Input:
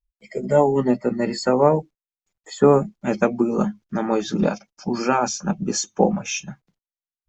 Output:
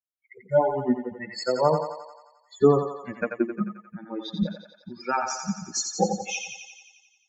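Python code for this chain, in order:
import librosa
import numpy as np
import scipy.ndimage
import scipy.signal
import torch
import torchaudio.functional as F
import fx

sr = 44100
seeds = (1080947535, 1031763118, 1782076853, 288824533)

p1 = fx.bin_expand(x, sr, power=3.0)
y = p1 + fx.echo_thinned(p1, sr, ms=88, feedback_pct=67, hz=470.0, wet_db=-5.5, dry=0)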